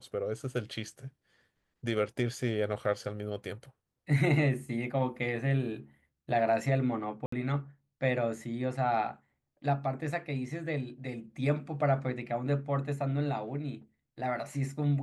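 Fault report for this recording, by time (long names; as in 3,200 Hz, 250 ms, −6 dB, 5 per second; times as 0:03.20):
0:07.26–0:07.32: drop-out 64 ms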